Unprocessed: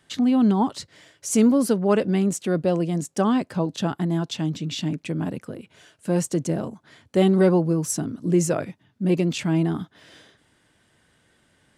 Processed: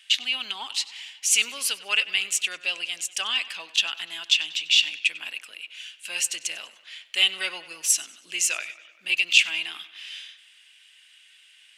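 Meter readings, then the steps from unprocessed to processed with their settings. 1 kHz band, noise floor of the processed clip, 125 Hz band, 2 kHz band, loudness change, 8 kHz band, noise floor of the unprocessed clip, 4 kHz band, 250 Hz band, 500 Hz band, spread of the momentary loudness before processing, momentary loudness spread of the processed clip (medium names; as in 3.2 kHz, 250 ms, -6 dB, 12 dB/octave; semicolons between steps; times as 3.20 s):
-10.5 dB, -56 dBFS, under -40 dB, +12.5 dB, -1.0 dB, +7.0 dB, -64 dBFS, +15.0 dB, under -30 dB, -24.0 dB, 13 LU, 18 LU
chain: resonant high-pass 2.7 kHz, resonance Q 4.8; on a send: tape echo 96 ms, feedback 66%, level -16.5 dB, low-pass 5.1 kHz; on the sum: trim +6 dB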